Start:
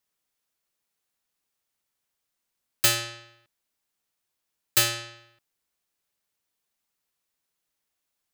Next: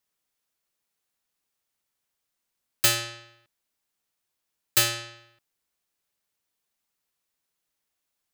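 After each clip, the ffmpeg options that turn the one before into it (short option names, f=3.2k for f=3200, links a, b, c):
-af anull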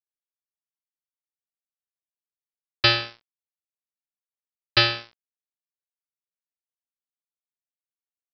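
-af "acompressor=mode=upward:threshold=-32dB:ratio=2.5,aresample=11025,aeval=exprs='sgn(val(0))*max(abs(val(0))-0.0141,0)':c=same,aresample=44100,volume=8dB"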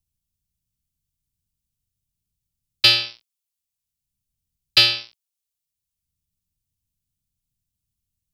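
-filter_complex "[0:a]acrossover=split=140|570|3000[a][b][c][d];[a]acompressor=mode=upward:threshold=-47dB:ratio=2.5[e];[e][b][c][d]amix=inputs=4:normalize=0,aexciter=amount=3.9:drive=6.4:freq=2.4k,volume=-5dB"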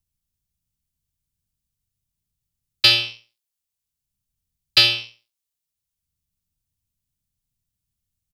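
-af "aecho=1:1:69|138|207:0.224|0.0582|0.0151"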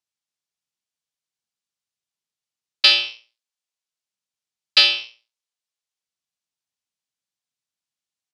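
-af "highpass=500,lowpass=6.5k,volume=1dB"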